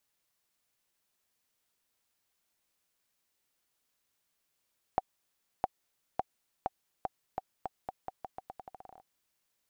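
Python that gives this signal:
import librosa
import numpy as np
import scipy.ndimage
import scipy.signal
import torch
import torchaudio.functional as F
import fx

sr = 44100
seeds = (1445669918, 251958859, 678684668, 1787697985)

y = fx.bouncing_ball(sr, first_gap_s=0.66, ratio=0.84, hz=761.0, decay_ms=30.0, level_db=-14.0)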